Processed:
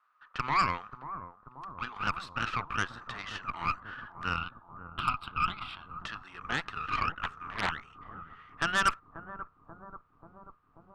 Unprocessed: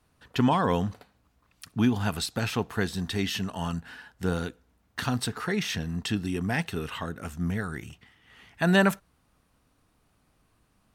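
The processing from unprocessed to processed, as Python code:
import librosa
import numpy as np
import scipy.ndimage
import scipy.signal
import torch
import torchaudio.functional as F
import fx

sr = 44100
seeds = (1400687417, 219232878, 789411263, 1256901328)

p1 = fx.rider(x, sr, range_db=4, speed_s=0.5)
p2 = x + (p1 * 10.0 ** (1.5 / 20.0))
p3 = fx.ladder_bandpass(p2, sr, hz=1300.0, resonance_pct=80)
p4 = fx.cheby_harmonics(p3, sr, harmonics=(8,), levels_db=(-16,), full_scale_db=-13.5)
p5 = fx.fixed_phaser(p4, sr, hz=1800.0, stages=6, at=(4.36, 6.0))
p6 = p5 + fx.echo_bbd(p5, sr, ms=536, stages=4096, feedback_pct=70, wet_db=-11.5, dry=0)
y = fx.doppler_dist(p6, sr, depth_ms=0.83, at=(7.21, 7.72))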